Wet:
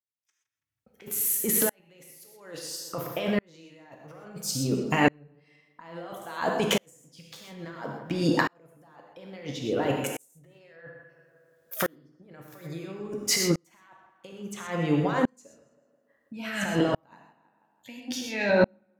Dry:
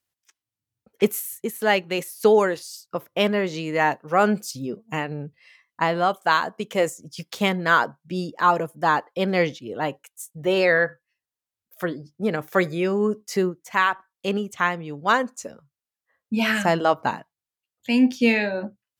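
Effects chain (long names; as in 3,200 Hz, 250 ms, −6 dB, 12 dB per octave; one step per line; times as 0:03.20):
compressor whose output falls as the input rises −31 dBFS, ratio −1
tape delay 163 ms, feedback 50%, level −12.5 dB, low-pass 2,900 Hz
reverb whose tail is shaped and stops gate 150 ms flat, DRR 2 dB
tremolo with a ramp in dB swelling 0.59 Hz, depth 39 dB
level +7.5 dB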